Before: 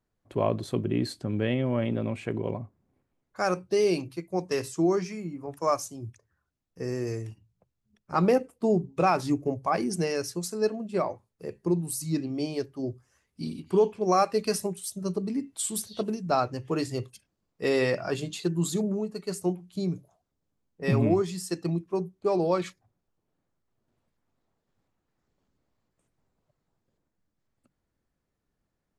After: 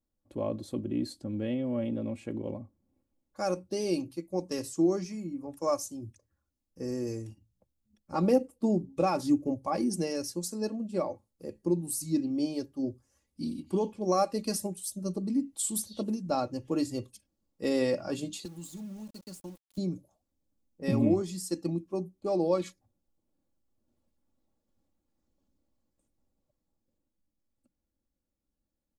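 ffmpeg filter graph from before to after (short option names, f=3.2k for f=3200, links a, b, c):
-filter_complex "[0:a]asettb=1/sr,asplit=3[a][b][c];[a]atrim=end=18.454[d];[b]atrim=start=18.45:end=19.78,asetpts=PTS-STARTPTS,afade=t=in:d=0.004:c=qsin,afade=t=out:st=1.326:d=0.004:c=qsin,equalizer=f=440:w=1.4:g=-9,acrossover=split=95|2300[e][f][g];[e]acompressor=threshold=-59dB:ratio=4[h];[f]acompressor=threshold=-40dB:ratio=4[i];[g]acompressor=threshold=-47dB:ratio=4[j];[h][i][j]amix=inputs=3:normalize=0,aeval=exprs='val(0)*gte(abs(val(0)),0.00447)':c=same[k];[c]atrim=start=19.776[l];[d][k]acrossfade=d=0.004:c1=hsin:c2=qsin[m];[m][l]acrossfade=d=0.004:c1=qsin:c2=hsin,equalizer=f=1.7k:w=0.64:g=-11,aecho=1:1:3.6:0.58,dynaudnorm=f=190:g=31:m=4dB,volume=-5dB"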